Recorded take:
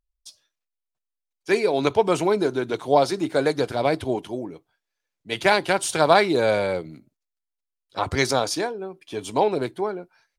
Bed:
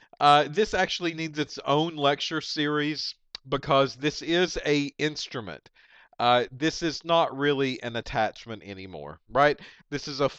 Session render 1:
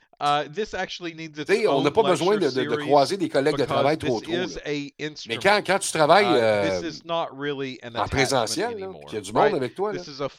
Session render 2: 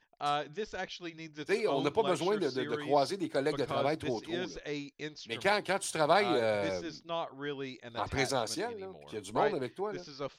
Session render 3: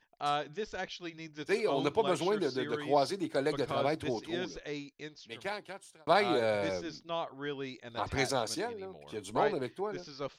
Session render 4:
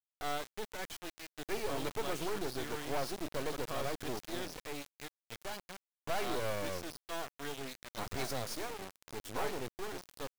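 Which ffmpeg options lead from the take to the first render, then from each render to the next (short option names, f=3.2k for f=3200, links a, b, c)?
-filter_complex "[1:a]volume=-4dB[a];[0:a][a]amix=inputs=2:normalize=0"
-af "volume=-10dB"
-filter_complex "[0:a]asplit=2[a][b];[a]atrim=end=6.07,asetpts=PTS-STARTPTS,afade=t=out:st=4.44:d=1.63[c];[b]atrim=start=6.07,asetpts=PTS-STARTPTS,afade=t=in:d=0.004:c=hsin[d];[c][d]concat=n=2:v=0:a=1"
-af "asoftclip=type=tanh:threshold=-25.5dB,acrusher=bits=4:dc=4:mix=0:aa=0.000001"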